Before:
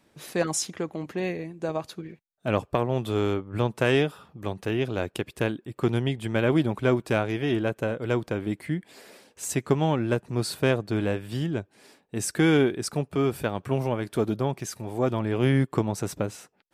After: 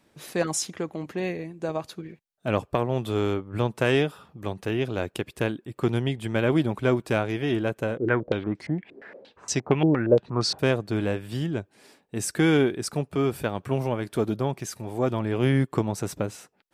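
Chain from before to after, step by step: 7.97–10.59 stepped low-pass 8.6 Hz 360–5600 Hz

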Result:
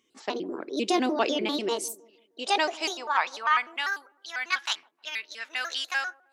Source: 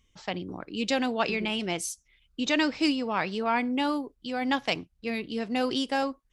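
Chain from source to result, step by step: trilling pitch shifter +5 st, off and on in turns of 99 ms; high-pass sweep 330 Hz -> 1600 Hz, 1.54–3.94; dark delay 0.156 s, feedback 38%, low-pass 600 Hz, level -16.5 dB

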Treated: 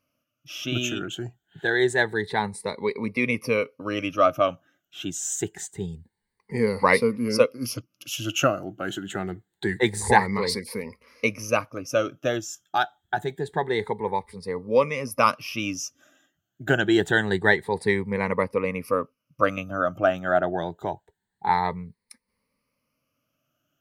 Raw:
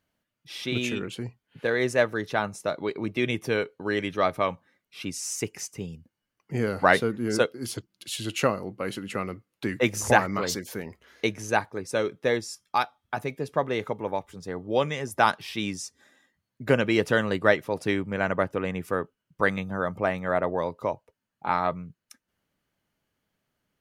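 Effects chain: moving spectral ripple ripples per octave 0.91, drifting +0.26 Hz, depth 17 dB; gain -1 dB

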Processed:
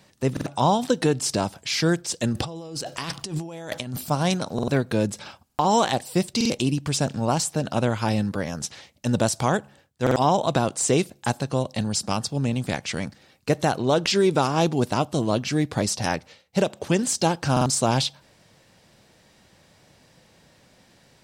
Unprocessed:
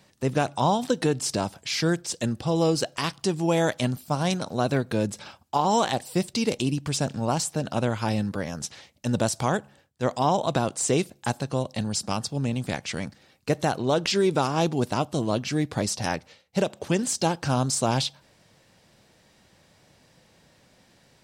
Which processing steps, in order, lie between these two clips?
2.33–4.1 negative-ratio compressor -35 dBFS, ratio -1; stuck buffer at 0.32/4.54/5.45/6.36/10.02/17.52, samples 2048, times 2; gain +2.5 dB

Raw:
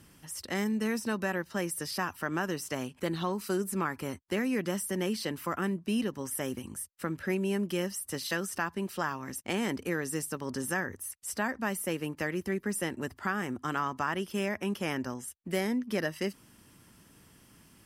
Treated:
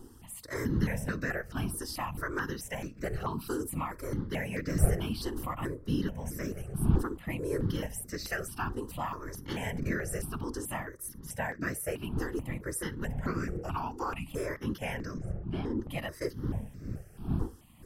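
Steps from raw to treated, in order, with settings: wind noise 180 Hz -35 dBFS; 15.18–15.79 tape spacing loss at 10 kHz 24 dB; on a send at -21 dB: reverb, pre-delay 3 ms; 13.25–14.3 on the sum: frequency shift -370 Hz; whisperiser; step phaser 4.6 Hz 620–3100 Hz

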